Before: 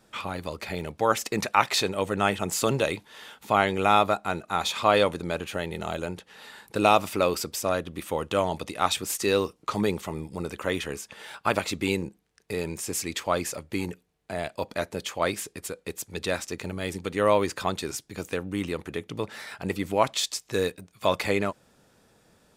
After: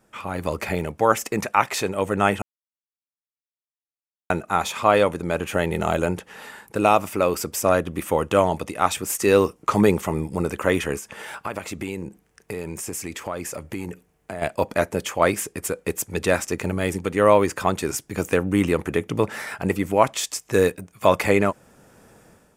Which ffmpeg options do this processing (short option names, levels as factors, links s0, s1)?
-filter_complex "[0:a]asplit=3[s0][s1][s2];[s0]afade=t=out:st=10.98:d=0.02[s3];[s1]acompressor=threshold=0.01:ratio=3:attack=3.2:release=140:knee=1:detection=peak,afade=t=in:st=10.98:d=0.02,afade=t=out:st=14.41:d=0.02[s4];[s2]afade=t=in:st=14.41:d=0.02[s5];[s3][s4][s5]amix=inputs=3:normalize=0,asplit=3[s6][s7][s8];[s6]atrim=end=2.42,asetpts=PTS-STARTPTS,afade=t=out:st=2.416:d=0.004:c=hsin[s9];[s7]atrim=start=2.42:end=4.3,asetpts=PTS-STARTPTS,volume=0[s10];[s8]atrim=start=4.3,asetpts=PTS-STARTPTS,afade=t=in:d=0.004:c=hsin[s11];[s9][s10][s11]concat=n=3:v=0:a=1,equalizer=f=4000:w=1.8:g=-10.5,dynaudnorm=f=110:g=7:m=3.76,volume=0.891"